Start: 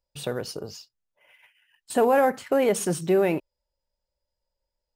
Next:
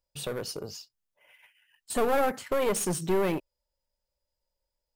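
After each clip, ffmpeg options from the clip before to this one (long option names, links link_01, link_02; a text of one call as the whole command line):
ffmpeg -i in.wav -af "highshelf=frequency=6200:gain=4.5,aeval=exprs='clip(val(0),-1,0.0473)':channel_layout=same,volume=-2dB" out.wav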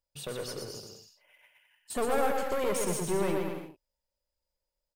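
ffmpeg -i in.wav -af "aecho=1:1:120|210|277.5|328.1|366.1:0.631|0.398|0.251|0.158|0.1,volume=-4.5dB" out.wav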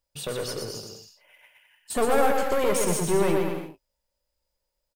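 ffmpeg -i in.wav -filter_complex "[0:a]asplit=2[link_01][link_02];[link_02]adelay=18,volume=-13dB[link_03];[link_01][link_03]amix=inputs=2:normalize=0,volume=6dB" out.wav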